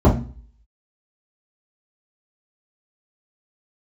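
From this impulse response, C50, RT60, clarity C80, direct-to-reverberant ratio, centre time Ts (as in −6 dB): 8.5 dB, 0.40 s, 16.0 dB, −7.5 dB, 23 ms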